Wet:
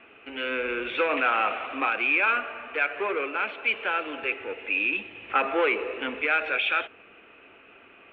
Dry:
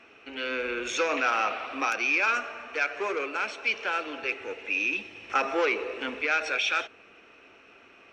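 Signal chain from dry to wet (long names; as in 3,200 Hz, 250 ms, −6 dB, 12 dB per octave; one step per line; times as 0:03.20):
Butterworth low-pass 3,400 Hz 48 dB per octave
level +2 dB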